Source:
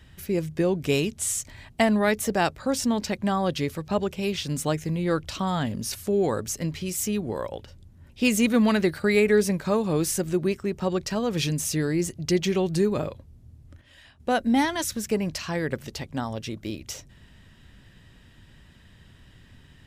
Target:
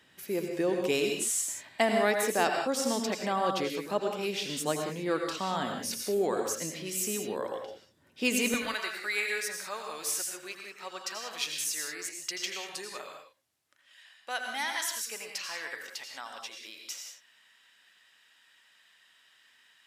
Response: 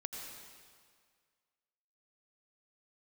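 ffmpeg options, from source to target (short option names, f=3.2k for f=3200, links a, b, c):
-filter_complex "[0:a]asetnsamples=n=441:p=0,asendcmd='8.54 highpass f 1200',highpass=320[a];[1:a]atrim=start_sample=2205,afade=t=out:st=0.25:d=0.01,atrim=end_sample=11466[b];[a][b]afir=irnorm=-1:irlink=0"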